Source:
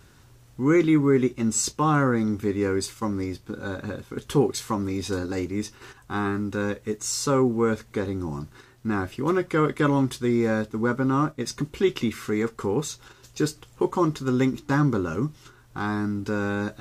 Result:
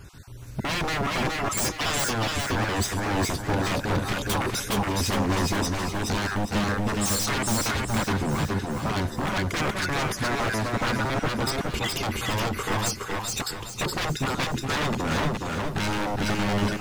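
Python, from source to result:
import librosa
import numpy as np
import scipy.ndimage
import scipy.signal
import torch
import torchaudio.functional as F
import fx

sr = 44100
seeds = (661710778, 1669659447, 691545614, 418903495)

p1 = fx.spec_dropout(x, sr, seeds[0], share_pct=34)
p2 = fx.recorder_agc(p1, sr, target_db=-15.0, rise_db_per_s=8.8, max_gain_db=30)
p3 = fx.low_shelf(p2, sr, hz=250.0, db=8.5, at=(7.69, 8.12))
p4 = 10.0 ** (-27.5 / 20.0) * (np.abs((p3 / 10.0 ** (-27.5 / 20.0) + 3.0) % 4.0 - 2.0) - 1.0)
p5 = fx.bass_treble(p4, sr, bass_db=4, treble_db=1)
p6 = p5 + fx.echo_single(p5, sr, ms=421, db=-3.0, dry=0)
p7 = fx.echo_crushed(p6, sr, ms=411, feedback_pct=55, bits=10, wet_db=-10)
y = p7 * librosa.db_to_amplitude(4.5)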